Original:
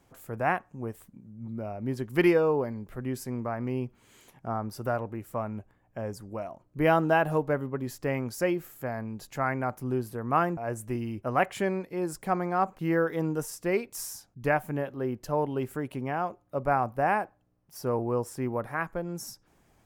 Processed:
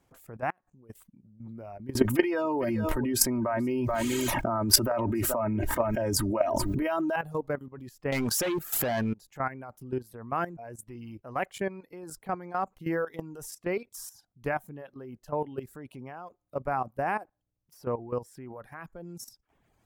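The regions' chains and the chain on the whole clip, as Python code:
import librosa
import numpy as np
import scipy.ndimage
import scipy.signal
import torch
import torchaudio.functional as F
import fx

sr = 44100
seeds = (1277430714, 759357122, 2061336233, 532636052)

y = fx.chain(x, sr, fx.level_steps(step_db=23),
    fx.transient(attack_db=1, sustain_db=9), at=(0.5, 0.9))
y = fx.chain(y, sr, fx.comb(ms=3.2, depth=0.77),
    fx.echo_single(ms=431, db=-20.5),
    fx.env_flatten(amount_pct=100), at=(1.95, 7.16))
y = fx.chain(y, sr, fx.low_shelf(hz=320.0, db=-8.0),
    fx.leveller(passes=5),
    fx.pre_swell(db_per_s=55.0), at=(8.12, 9.14))
y = fx.dereverb_blind(y, sr, rt60_s=0.64)
y = fx.level_steps(y, sr, step_db=14)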